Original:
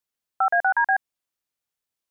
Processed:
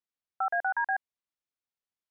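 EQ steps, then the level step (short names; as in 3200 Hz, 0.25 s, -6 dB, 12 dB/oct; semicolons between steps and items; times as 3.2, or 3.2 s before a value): air absorption 77 m; -8.0 dB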